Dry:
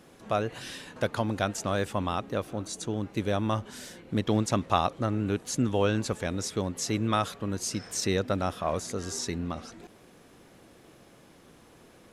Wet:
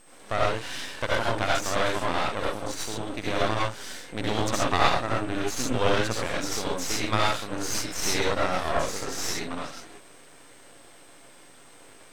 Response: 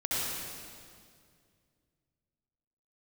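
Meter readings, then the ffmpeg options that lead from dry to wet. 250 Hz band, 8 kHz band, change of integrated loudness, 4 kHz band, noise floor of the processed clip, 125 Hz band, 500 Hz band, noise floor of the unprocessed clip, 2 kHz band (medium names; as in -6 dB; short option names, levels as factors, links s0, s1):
-2.5 dB, +3.5 dB, +2.5 dB, +6.5 dB, -50 dBFS, -2.5 dB, +2.5 dB, -56 dBFS, +8.5 dB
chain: -filter_complex "[0:a]highpass=f=740:p=1[s0];[1:a]atrim=start_sample=2205,afade=t=out:st=0.19:d=0.01,atrim=end_sample=8820[s1];[s0][s1]afir=irnorm=-1:irlink=0,aeval=exprs='val(0)+0.002*sin(2*PI*8400*n/s)':c=same,aeval=exprs='max(val(0),0)':c=same,highshelf=f=10000:g=-12,volume=2.24"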